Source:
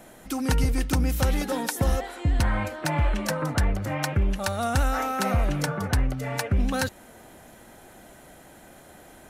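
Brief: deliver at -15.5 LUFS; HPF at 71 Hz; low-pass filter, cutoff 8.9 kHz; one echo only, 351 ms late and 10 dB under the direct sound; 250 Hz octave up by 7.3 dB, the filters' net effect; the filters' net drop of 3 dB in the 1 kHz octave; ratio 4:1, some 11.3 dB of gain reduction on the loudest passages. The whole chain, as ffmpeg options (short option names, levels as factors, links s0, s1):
-af "highpass=71,lowpass=8900,equalizer=f=250:t=o:g=9,equalizer=f=1000:t=o:g=-5,acompressor=threshold=0.0251:ratio=4,aecho=1:1:351:0.316,volume=8.91"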